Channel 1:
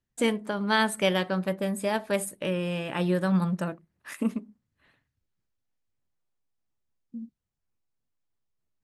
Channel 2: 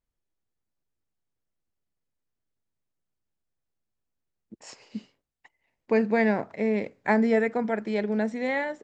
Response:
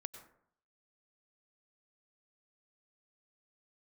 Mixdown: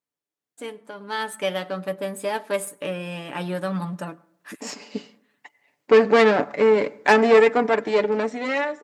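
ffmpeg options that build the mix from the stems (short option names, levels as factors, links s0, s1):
-filter_complex "[0:a]aeval=exprs='if(lt(val(0),0),0.708*val(0),val(0))':c=same,adelay=400,volume=0.266,asplit=2[s0][s1];[s1]volume=0.266[s2];[1:a]aeval=exprs='(tanh(14.1*val(0)+0.75)-tanh(0.75))/14.1':c=same,volume=1.19,asplit=3[s3][s4][s5];[s4]volume=0.316[s6];[s5]apad=whole_len=407168[s7];[s0][s7]sidechaincompress=threshold=0.00158:ratio=8:attack=6.2:release=254[s8];[2:a]atrim=start_sample=2205[s9];[s2][s6]amix=inputs=2:normalize=0[s10];[s10][s9]afir=irnorm=-1:irlink=0[s11];[s8][s3][s11]amix=inputs=3:normalize=0,highpass=220,aecho=1:1:6.9:0.51,dynaudnorm=f=300:g=9:m=3.98"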